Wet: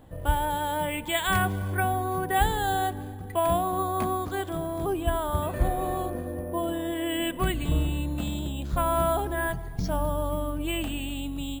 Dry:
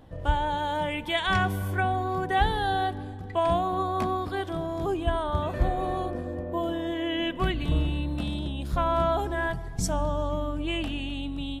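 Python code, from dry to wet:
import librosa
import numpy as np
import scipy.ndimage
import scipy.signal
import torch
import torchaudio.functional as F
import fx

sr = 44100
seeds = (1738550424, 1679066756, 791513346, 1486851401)

y = np.repeat(scipy.signal.resample_poly(x, 1, 4), 4)[:len(x)]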